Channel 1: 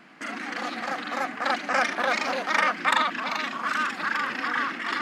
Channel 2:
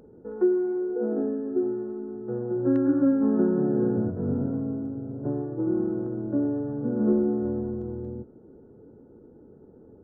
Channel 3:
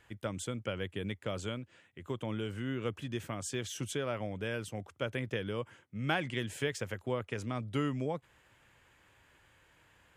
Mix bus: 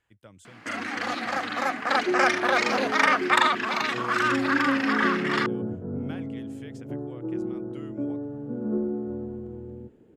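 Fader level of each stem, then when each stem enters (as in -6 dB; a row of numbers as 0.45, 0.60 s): +2.0, -5.0, -13.0 dB; 0.45, 1.65, 0.00 s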